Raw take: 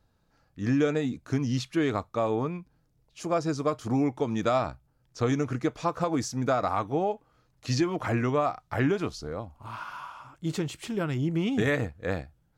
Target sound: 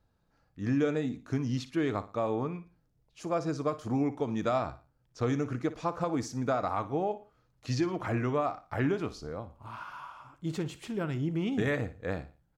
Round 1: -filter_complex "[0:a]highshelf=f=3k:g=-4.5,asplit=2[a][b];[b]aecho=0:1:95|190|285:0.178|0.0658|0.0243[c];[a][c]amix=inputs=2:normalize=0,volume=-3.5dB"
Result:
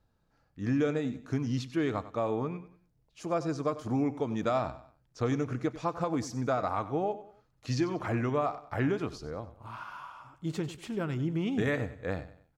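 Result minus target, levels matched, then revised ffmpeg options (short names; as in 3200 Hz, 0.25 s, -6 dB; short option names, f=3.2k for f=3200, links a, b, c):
echo 37 ms late
-filter_complex "[0:a]highshelf=f=3k:g=-4.5,asplit=2[a][b];[b]aecho=0:1:58|116|174:0.178|0.0658|0.0243[c];[a][c]amix=inputs=2:normalize=0,volume=-3.5dB"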